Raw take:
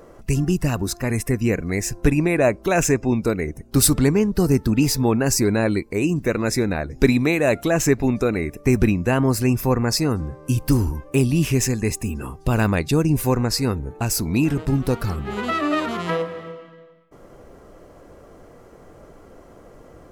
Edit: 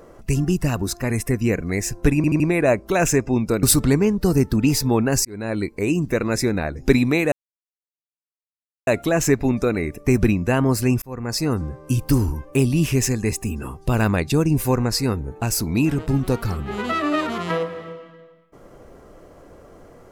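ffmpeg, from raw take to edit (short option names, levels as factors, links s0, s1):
-filter_complex "[0:a]asplit=8[s0][s1][s2][s3][s4][s5][s6][s7];[s0]atrim=end=2.242[s8];[s1]atrim=start=2.158:end=2.242[s9];[s2]atrim=start=2.158:end=2.242[s10];[s3]atrim=start=2.158:end=3.392[s11];[s4]atrim=start=3.768:end=5.39,asetpts=PTS-STARTPTS,afade=t=out:st=1.618:d=0.004:c=hsin[s12];[s5]atrim=start=5.39:end=7.46,asetpts=PTS-STARTPTS,afade=t=in:d=0.48,afade=t=out:st=2.066:d=0.004:c=hsin,apad=pad_dur=1.55[s13];[s6]atrim=start=7.46:end=9.61,asetpts=PTS-STARTPTS,afade=t=in:d=0.004:c=hsin,afade=t=out:st=2.146:d=0.004:c=hsin[s14];[s7]atrim=start=9.61,asetpts=PTS-STARTPTS,afade=t=in:d=0.5[s15];[s8][s9]acrossfade=d=0.004:c1=hsin:c2=hsin[s16];[s16][s10]acrossfade=d=0.004:c1=hsin:c2=hsin[s17];[s17][s11]acrossfade=d=0.004:c1=hsin:c2=hsin[s18];[s12][s13][s14][s15]concat=n=4:v=0:a=1[s19];[s18][s19]acrossfade=d=0.004:c1=hsin:c2=hsin"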